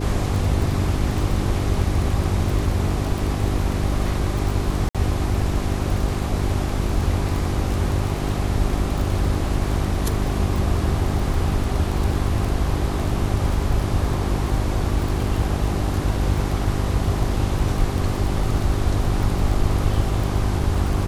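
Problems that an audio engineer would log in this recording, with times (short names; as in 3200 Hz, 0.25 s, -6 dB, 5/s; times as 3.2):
crackle 22/s -24 dBFS
hum 50 Hz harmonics 8 -25 dBFS
4.89–4.95 gap 56 ms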